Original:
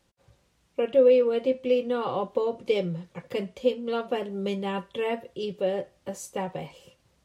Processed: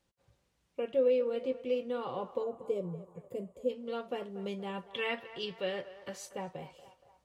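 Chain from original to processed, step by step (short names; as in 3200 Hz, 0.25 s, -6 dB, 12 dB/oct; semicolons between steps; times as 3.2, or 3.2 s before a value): 2.43–3.7 spectral gain 730–6600 Hz -15 dB; 4.93–6.29 band shelf 2400 Hz +11 dB 2.5 oct; on a send: narrowing echo 0.236 s, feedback 60%, band-pass 980 Hz, level -13 dB; on the sum: gain -9 dB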